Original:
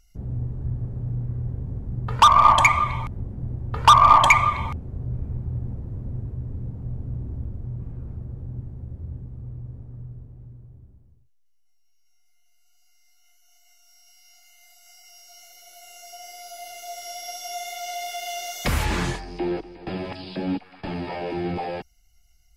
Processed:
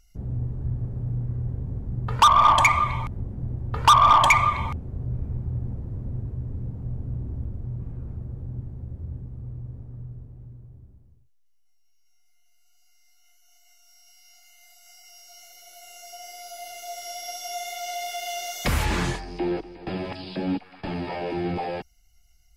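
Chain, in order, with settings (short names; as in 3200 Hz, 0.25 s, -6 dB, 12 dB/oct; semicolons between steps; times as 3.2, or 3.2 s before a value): soft clip -8.5 dBFS, distortion -16 dB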